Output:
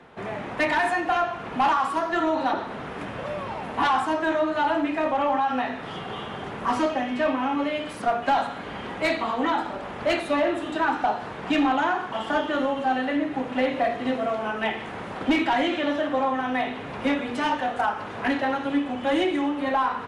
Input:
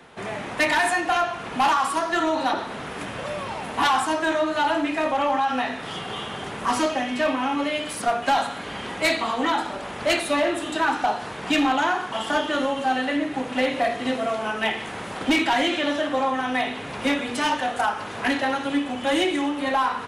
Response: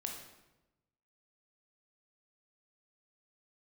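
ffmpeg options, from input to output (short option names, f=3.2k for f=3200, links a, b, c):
-af "lowpass=f=1.8k:p=1"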